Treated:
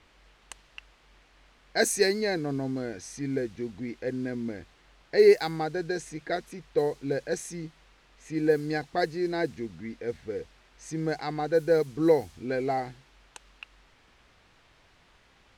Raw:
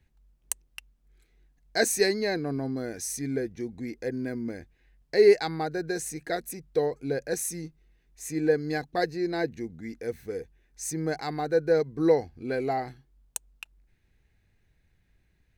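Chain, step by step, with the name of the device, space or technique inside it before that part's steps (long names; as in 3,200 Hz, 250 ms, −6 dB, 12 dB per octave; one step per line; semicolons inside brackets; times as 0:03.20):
cassette deck with a dynamic noise filter (white noise bed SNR 24 dB; low-pass that shuts in the quiet parts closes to 2,700 Hz, open at −19 dBFS)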